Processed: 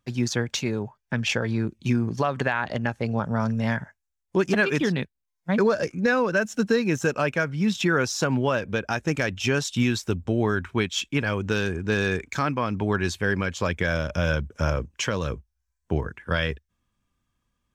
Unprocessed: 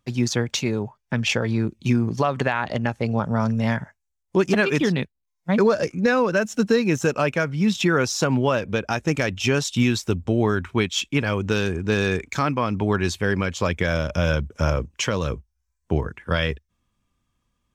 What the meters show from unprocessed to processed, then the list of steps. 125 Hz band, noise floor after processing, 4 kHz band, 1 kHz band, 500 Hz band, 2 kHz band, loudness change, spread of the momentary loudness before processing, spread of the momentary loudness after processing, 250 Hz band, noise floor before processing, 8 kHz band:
−3.0 dB, −80 dBFS, −3.0 dB, −2.5 dB, −3.0 dB, −0.5 dB, −2.5 dB, 6 LU, 6 LU, −3.0 dB, −77 dBFS, −3.0 dB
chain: parametric band 1,600 Hz +4.5 dB 0.26 octaves
level −3 dB

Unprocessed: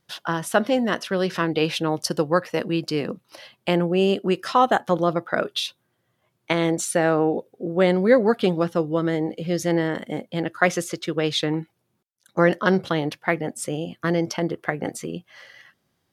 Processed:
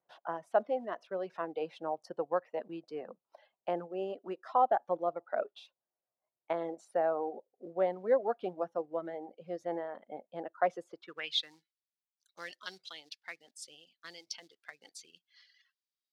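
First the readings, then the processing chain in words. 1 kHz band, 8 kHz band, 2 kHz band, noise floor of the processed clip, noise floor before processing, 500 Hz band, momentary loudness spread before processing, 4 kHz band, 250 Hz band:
−9.5 dB, below −20 dB, −19.0 dB, below −85 dBFS, −73 dBFS, −12.0 dB, 10 LU, −12.5 dB, −22.0 dB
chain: reverb reduction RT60 1.6 s
high-pass filter 94 Hz 12 dB per octave
floating-point word with a short mantissa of 4 bits
band-pass filter sweep 700 Hz → 4,500 Hz, 0:10.92–0:11.45
level −5 dB

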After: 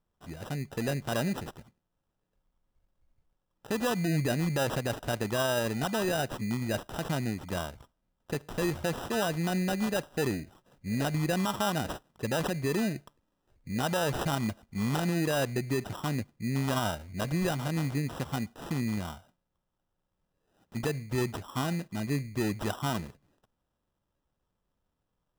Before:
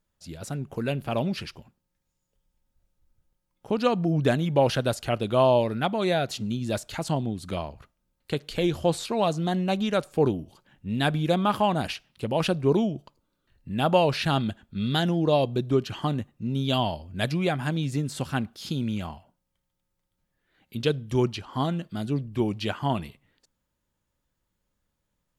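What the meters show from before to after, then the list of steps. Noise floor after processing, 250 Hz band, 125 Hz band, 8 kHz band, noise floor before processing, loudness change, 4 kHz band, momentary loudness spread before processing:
−82 dBFS, −4.0 dB, −4.0 dB, +3.0 dB, −79 dBFS, −5.0 dB, −5.5 dB, 11 LU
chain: decimation without filtering 20×
brickwall limiter −19 dBFS, peak gain reduction 9 dB
level −2.5 dB

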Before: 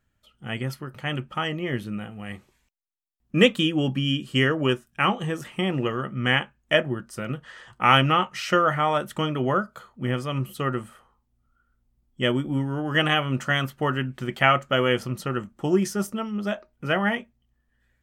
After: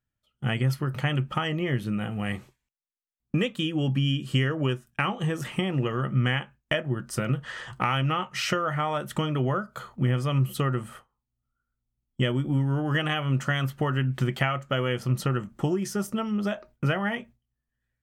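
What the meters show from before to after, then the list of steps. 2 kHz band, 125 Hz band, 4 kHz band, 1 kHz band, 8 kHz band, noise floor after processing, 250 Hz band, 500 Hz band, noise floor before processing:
−5.5 dB, +3.0 dB, −5.5 dB, −6.0 dB, 0.0 dB, −85 dBFS, −2.0 dB, −5.0 dB, −72 dBFS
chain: noise gate with hold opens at −40 dBFS
downward compressor 6 to 1, threshold −32 dBFS, peak gain reduction 19 dB
parametric band 130 Hz +7.5 dB 0.38 octaves
level +7 dB

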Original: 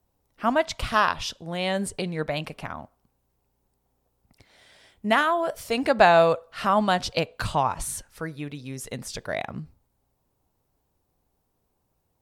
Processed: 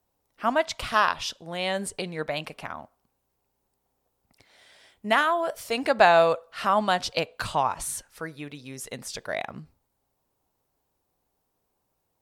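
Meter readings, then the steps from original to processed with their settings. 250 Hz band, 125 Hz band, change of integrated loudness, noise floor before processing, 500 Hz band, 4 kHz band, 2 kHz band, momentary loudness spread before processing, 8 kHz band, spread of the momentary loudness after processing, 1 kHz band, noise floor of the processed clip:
−5.0 dB, −6.5 dB, −0.5 dB, −74 dBFS, −1.5 dB, 0.0 dB, 0.0 dB, 17 LU, 0.0 dB, 18 LU, −0.5 dB, −77 dBFS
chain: low-shelf EQ 240 Hz −9.5 dB

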